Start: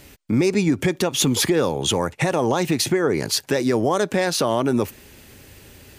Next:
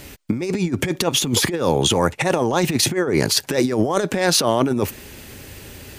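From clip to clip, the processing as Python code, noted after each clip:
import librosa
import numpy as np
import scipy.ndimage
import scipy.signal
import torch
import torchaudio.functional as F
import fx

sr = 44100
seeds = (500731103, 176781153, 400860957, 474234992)

y = fx.over_compress(x, sr, threshold_db=-22.0, ratio=-0.5)
y = y * librosa.db_to_amplitude(4.0)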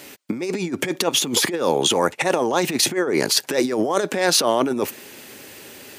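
y = scipy.signal.sosfilt(scipy.signal.butter(2, 260.0, 'highpass', fs=sr, output='sos'), x)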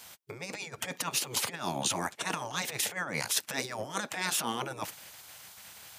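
y = fx.spec_gate(x, sr, threshold_db=-10, keep='weak')
y = y * librosa.db_to_amplitude(-6.0)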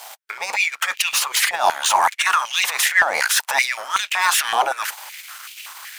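y = fx.leveller(x, sr, passes=3)
y = fx.filter_held_highpass(y, sr, hz=5.3, low_hz=750.0, high_hz=2600.0)
y = y * librosa.db_to_amplitude(2.0)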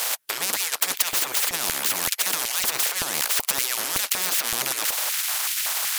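y = fx.peak_eq(x, sr, hz=12000.0, db=9.0, octaves=0.64)
y = fx.spectral_comp(y, sr, ratio=10.0)
y = y * librosa.db_to_amplitude(1.0)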